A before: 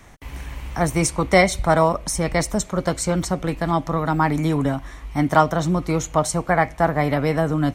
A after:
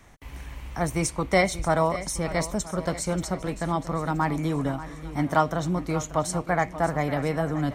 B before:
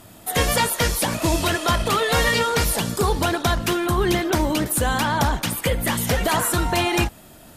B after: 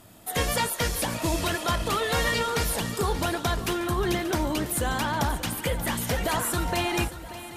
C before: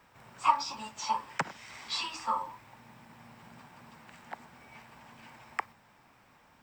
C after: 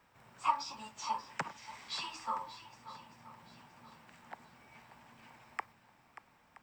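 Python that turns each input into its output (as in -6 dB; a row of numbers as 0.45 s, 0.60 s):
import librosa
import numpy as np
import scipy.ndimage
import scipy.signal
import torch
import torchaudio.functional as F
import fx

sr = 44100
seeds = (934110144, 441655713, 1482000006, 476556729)

y = fx.echo_swing(x, sr, ms=973, ratio=1.5, feedback_pct=30, wet_db=-14.0)
y = y * librosa.db_to_amplitude(-6.0)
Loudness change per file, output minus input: -6.0 LU, -6.0 LU, -6.5 LU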